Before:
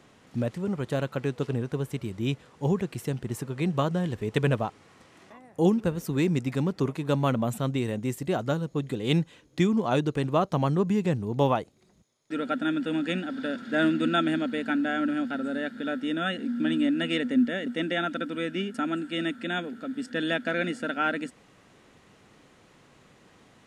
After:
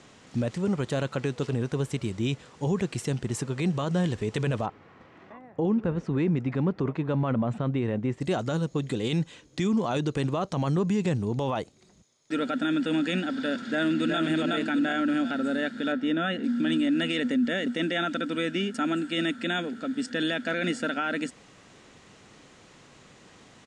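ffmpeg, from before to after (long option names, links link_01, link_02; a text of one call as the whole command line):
ffmpeg -i in.wav -filter_complex "[0:a]asplit=3[link_01][link_02][link_03];[link_01]afade=type=out:start_time=4.65:duration=0.02[link_04];[link_02]lowpass=1900,afade=type=in:start_time=4.65:duration=0.02,afade=type=out:start_time=8.2:duration=0.02[link_05];[link_03]afade=type=in:start_time=8.2:duration=0.02[link_06];[link_04][link_05][link_06]amix=inputs=3:normalize=0,asplit=2[link_07][link_08];[link_08]afade=type=in:start_time=13.63:duration=0.01,afade=type=out:start_time=14.19:duration=0.01,aecho=0:1:370|740|1110|1480|1850:0.668344|0.23392|0.0818721|0.0286552|0.0100293[link_09];[link_07][link_09]amix=inputs=2:normalize=0,asettb=1/sr,asplit=3[link_10][link_11][link_12];[link_10]atrim=end=15.924[link_13];[link_11]atrim=start=15.92:end=16.44,asetpts=PTS-STARTPTS,afade=type=in:duration=0.004:curve=qsin,afade=type=out:start_time=0.516:duration=0.004:curve=qsin,aemphasis=mode=reproduction:type=75kf[link_14];[link_12]atrim=start=16.436[link_15];[link_13][link_14]acrossfade=duration=0.004:curve1=hsin:curve2=qsin[link_16];[link_16][link_15]acrossfade=duration=0.004:curve1=qsin:curve2=hsin,lowpass=frequency=8300:width=0.5412,lowpass=frequency=8300:width=1.3066,highshelf=frequency=4300:gain=8,alimiter=limit=-21.5dB:level=0:latency=1:release=25,volume=3dB" out.wav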